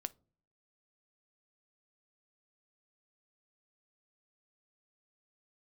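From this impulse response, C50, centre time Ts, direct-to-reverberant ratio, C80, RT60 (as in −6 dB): 24.0 dB, 2 ms, 13.5 dB, 32.0 dB, non-exponential decay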